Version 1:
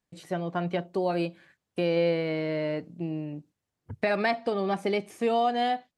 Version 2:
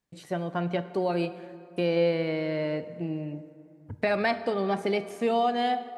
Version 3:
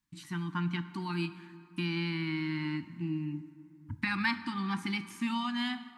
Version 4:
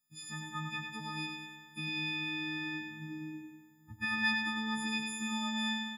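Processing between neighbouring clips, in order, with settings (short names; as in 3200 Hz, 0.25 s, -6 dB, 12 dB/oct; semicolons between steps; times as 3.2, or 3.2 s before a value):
plate-style reverb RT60 2.7 s, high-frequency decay 0.5×, pre-delay 0 ms, DRR 12 dB
elliptic band-stop 310–930 Hz, stop band 40 dB
frequency quantiser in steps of 6 st; feedback echo 0.1 s, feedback 54%, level -6 dB; gain -8.5 dB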